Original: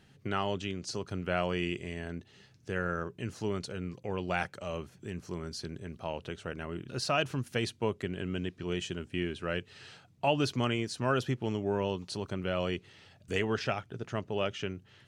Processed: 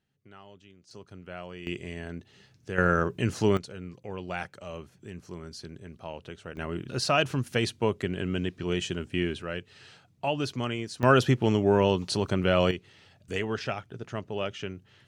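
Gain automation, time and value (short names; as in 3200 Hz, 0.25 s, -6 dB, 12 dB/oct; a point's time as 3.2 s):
-18.5 dB
from 0.91 s -10 dB
from 1.67 s +1 dB
from 2.78 s +10 dB
from 3.57 s -2.5 dB
from 6.57 s +5 dB
from 9.42 s -1 dB
from 11.03 s +9 dB
from 12.71 s 0 dB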